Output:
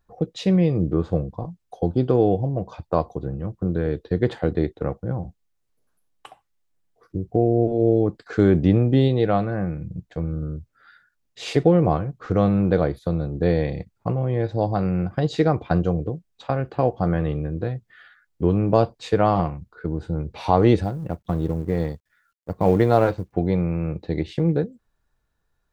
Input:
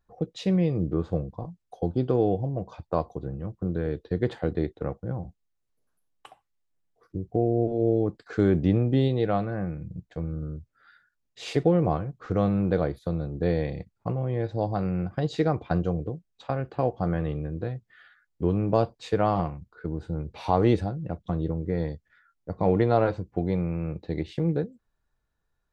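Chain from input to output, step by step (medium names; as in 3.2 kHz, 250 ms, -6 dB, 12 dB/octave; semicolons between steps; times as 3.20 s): 20.83–23.33 s: companding laws mixed up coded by A; trim +5 dB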